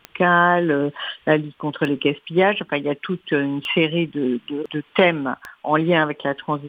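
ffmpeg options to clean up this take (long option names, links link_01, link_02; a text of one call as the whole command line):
ffmpeg -i in.wav -af "adeclick=threshold=4" out.wav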